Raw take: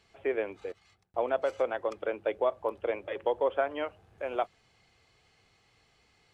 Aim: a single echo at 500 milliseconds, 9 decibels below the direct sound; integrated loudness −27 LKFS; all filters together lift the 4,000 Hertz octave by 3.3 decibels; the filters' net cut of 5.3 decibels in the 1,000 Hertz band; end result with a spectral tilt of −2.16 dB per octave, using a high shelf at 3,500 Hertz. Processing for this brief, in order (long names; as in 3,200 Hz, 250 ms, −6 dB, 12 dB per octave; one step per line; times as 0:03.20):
parametric band 1,000 Hz −8 dB
high-shelf EQ 3,500 Hz −3.5 dB
parametric band 4,000 Hz +7.5 dB
single-tap delay 500 ms −9 dB
level +7.5 dB